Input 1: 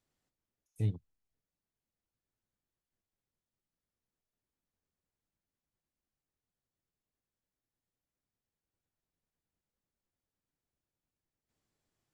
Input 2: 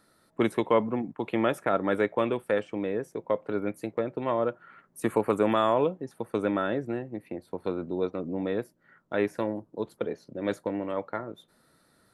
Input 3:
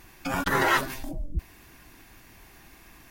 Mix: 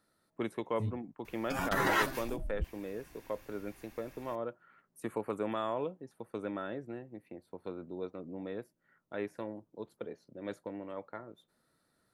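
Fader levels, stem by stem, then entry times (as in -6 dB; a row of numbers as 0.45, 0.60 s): -5.5, -11.0, -6.5 dB; 0.00, 0.00, 1.25 s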